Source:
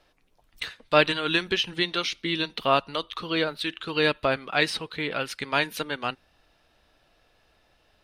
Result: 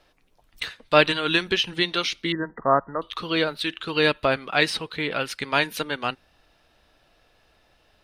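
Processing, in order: 2.32–3.02 s: brick-wall FIR low-pass 2 kHz; trim +2.5 dB

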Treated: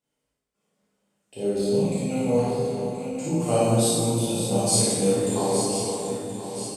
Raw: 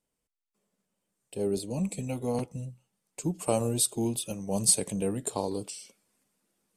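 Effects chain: backward echo that repeats 513 ms, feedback 68%, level -8 dB; high-pass 110 Hz 6 dB/octave; treble shelf 9.4 kHz -11.5 dB; early reflections 35 ms -3 dB, 54 ms -3.5 dB; plate-style reverb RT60 1.7 s, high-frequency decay 0.75×, DRR -7.5 dB; trim -3 dB

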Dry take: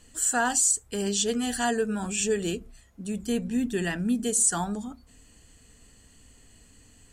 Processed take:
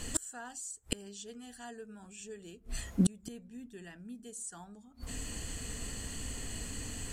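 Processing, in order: inverted gate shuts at -29 dBFS, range -35 dB; trim +14.5 dB

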